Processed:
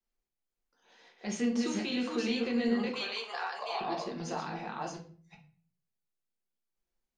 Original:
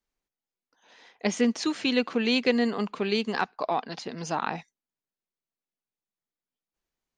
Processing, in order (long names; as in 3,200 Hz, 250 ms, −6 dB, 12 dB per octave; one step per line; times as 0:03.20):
delay that plays each chunk backwards 382 ms, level −2.5 dB
0:02.90–0:03.81: high-pass filter 600 Hz 24 dB per octave
brickwall limiter −18.5 dBFS, peak gain reduction 9.5 dB
convolution reverb RT60 0.45 s, pre-delay 5 ms, DRR −0.5 dB
level −8.5 dB